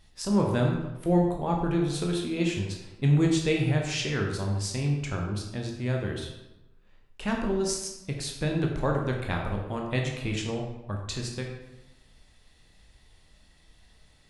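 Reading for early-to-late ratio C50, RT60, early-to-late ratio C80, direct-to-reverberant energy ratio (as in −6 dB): 4.0 dB, 1.0 s, 6.0 dB, 0.5 dB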